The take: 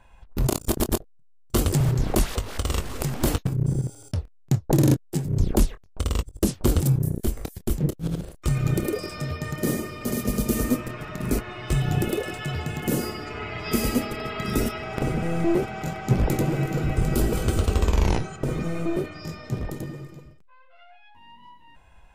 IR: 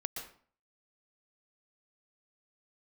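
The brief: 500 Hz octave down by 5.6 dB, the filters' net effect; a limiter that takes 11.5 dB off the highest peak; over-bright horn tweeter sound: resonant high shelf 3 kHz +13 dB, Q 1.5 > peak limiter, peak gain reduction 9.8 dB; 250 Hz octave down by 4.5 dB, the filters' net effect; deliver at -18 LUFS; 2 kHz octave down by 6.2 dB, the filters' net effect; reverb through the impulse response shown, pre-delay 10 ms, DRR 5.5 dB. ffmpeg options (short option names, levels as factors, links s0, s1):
-filter_complex "[0:a]equalizer=f=250:t=o:g=-5,equalizer=f=500:t=o:g=-5,equalizer=f=2000:t=o:g=-7,alimiter=limit=0.0794:level=0:latency=1,asplit=2[s0][s1];[1:a]atrim=start_sample=2205,adelay=10[s2];[s1][s2]afir=irnorm=-1:irlink=0,volume=0.501[s3];[s0][s3]amix=inputs=2:normalize=0,highshelf=f=3000:t=q:w=1.5:g=13,volume=3.55,alimiter=limit=0.473:level=0:latency=1"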